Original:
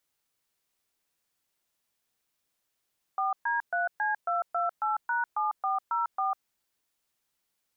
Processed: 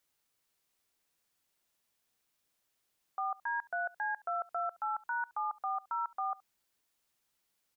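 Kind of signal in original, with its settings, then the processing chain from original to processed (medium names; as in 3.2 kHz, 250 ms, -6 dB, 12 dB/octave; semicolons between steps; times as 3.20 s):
DTMF "4D3C228#7404", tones 149 ms, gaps 124 ms, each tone -28 dBFS
peak limiter -28 dBFS; delay 71 ms -23 dB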